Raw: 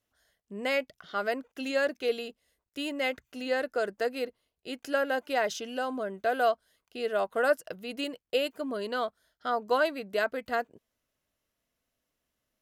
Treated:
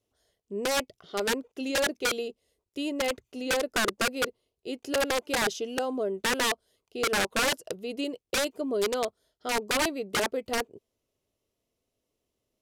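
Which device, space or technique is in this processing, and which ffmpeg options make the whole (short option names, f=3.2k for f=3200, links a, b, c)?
overflowing digital effects unit: -af "equalizer=f=100:t=o:w=0.67:g=5,equalizer=f=400:t=o:w=0.67:g=10,equalizer=f=1.6k:t=o:w=0.67:g=-11,aeval=exprs='(mod(10.6*val(0)+1,2)-1)/10.6':c=same,lowpass=12k"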